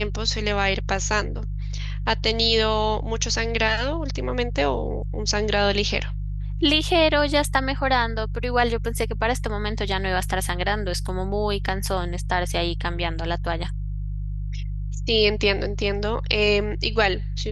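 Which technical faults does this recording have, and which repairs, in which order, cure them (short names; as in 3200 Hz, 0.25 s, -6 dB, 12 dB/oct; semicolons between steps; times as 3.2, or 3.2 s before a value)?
hum 50 Hz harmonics 3 -28 dBFS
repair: de-hum 50 Hz, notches 3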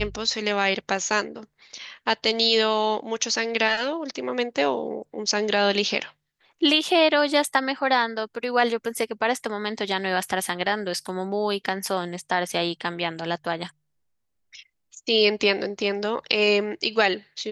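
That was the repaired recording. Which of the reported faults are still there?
none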